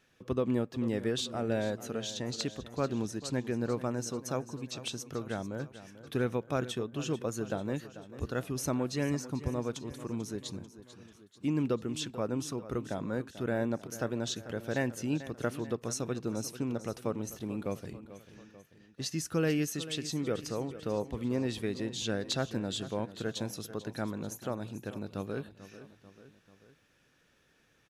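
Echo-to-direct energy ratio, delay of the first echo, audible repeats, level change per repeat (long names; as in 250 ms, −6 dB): −13.0 dB, 441 ms, 3, −5.0 dB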